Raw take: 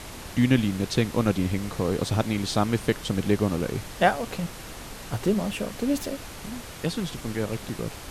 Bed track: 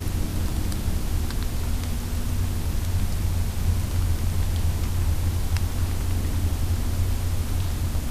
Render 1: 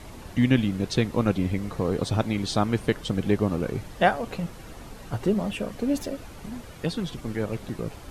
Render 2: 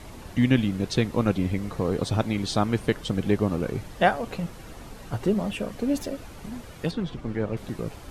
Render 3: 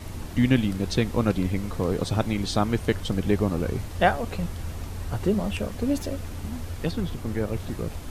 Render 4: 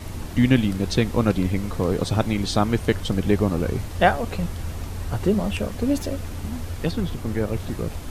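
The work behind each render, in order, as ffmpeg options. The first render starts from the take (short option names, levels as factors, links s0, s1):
-af "afftdn=nr=9:nf=-40"
-filter_complex "[0:a]asettb=1/sr,asplit=3[s0][s1][s2];[s0]atrim=end=6.914[s3];[s1]atrim=start=6.91:end=7.57,asetpts=PTS-STARTPTS,afade=t=in:d=0.004:c=qsin,afade=t=out:st=0.656:d=0.004:c=qsin,aemphasis=mode=reproduction:type=75fm[s4];[s2]atrim=start=7.566[s5];[s3][s4]acrossfade=d=0.004:c1=hsin:c2=qsin[s6];[s6][s5]acrossfade=d=0.004:c1=qsin:c2=hsin"
-filter_complex "[1:a]volume=0.299[s0];[0:a][s0]amix=inputs=2:normalize=0"
-af "volume=1.41"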